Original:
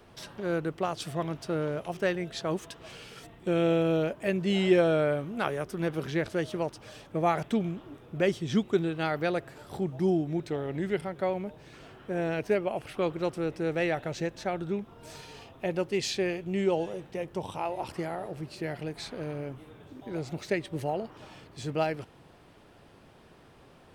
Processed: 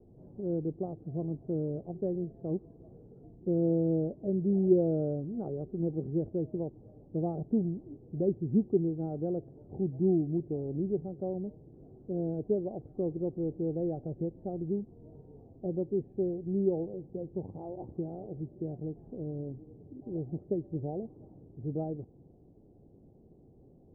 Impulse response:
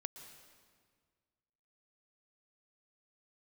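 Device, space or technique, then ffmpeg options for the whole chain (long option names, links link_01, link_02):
under water: -af "lowpass=frequency=430:width=0.5412,lowpass=frequency=430:width=1.3066,equalizer=frequency=770:width_type=o:width=0.3:gain=9"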